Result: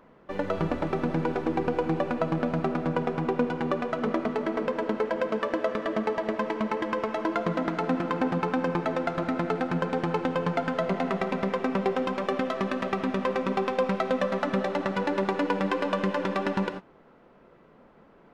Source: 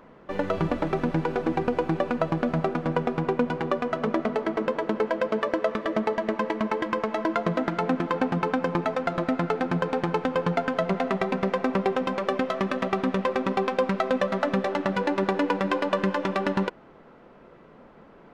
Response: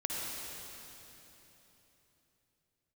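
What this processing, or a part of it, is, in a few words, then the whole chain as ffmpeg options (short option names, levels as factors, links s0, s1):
keyed gated reverb: -filter_complex "[0:a]asplit=3[s0][s1][s2];[1:a]atrim=start_sample=2205[s3];[s1][s3]afir=irnorm=-1:irlink=0[s4];[s2]apad=whole_len=808404[s5];[s4][s5]sidechaingate=range=0.0224:threshold=0.0141:ratio=16:detection=peak,volume=0.355[s6];[s0][s6]amix=inputs=2:normalize=0,volume=0.562"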